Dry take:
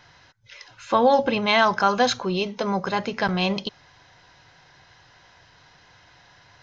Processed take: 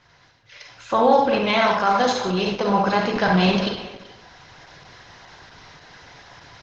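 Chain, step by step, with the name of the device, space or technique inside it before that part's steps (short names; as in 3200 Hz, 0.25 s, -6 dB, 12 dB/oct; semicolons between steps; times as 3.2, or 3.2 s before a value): speakerphone in a meeting room (reverb RT60 0.80 s, pre-delay 36 ms, DRR 1 dB; speakerphone echo 0.38 s, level -17 dB; AGC gain up to 9.5 dB; gain -3 dB; Opus 12 kbps 48000 Hz)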